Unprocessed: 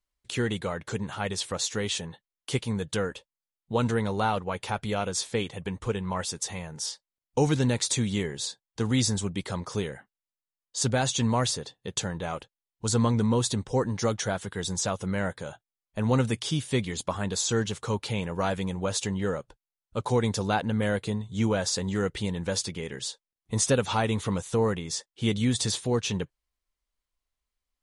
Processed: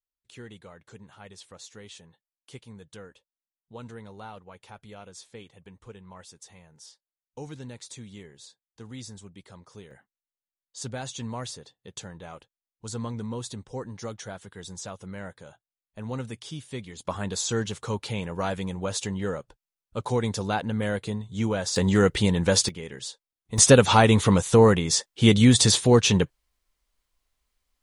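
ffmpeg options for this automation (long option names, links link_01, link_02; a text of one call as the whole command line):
ffmpeg -i in.wav -af "asetnsamples=nb_out_samples=441:pad=0,asendcmd='9.91 volume volume -9.5dB;17.05 volume volume -1dB;21.76 volume volume 8dB;22.69 volume volume -2.5dB;23.58 volume volume 9dB',volume=-16dB" out.wav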